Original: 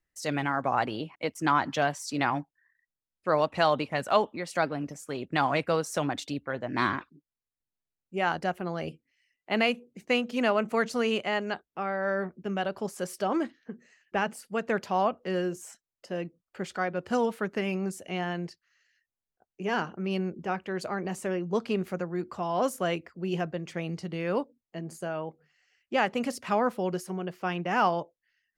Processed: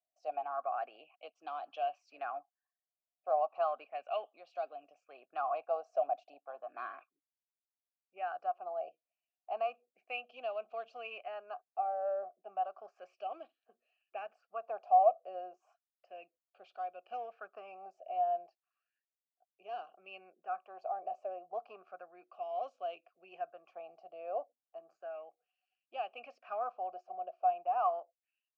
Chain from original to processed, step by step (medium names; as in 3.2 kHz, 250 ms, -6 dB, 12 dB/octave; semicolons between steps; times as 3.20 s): in parallel at -7.5 dB: saturation -26 dBFS, distortion -9 dB; on the sum: vowel filter a; cabinet simulation 400–5800 Hz, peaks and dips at 660 Hz +4 dB, 1 kHz -8 dB, 2.1 kHz -7 dB, 3.6 kHz -9 dB; sweeping bell 0.33 Hz 640–3700 Hz +13 dB; trim -8 dB